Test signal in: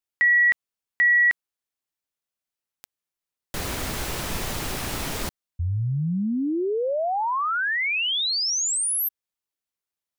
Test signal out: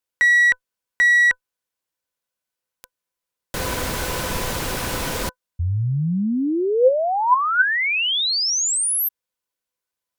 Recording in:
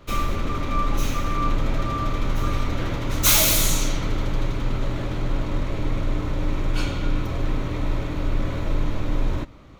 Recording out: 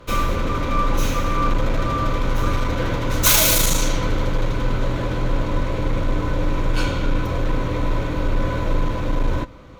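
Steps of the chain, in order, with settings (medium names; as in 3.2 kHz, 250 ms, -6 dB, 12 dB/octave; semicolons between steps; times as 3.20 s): one-sided clip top -17 dBFS; small resonant body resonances 510/1000/1500 Hz, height 11 dB, ringing for 85 ms; trim +3.5 dB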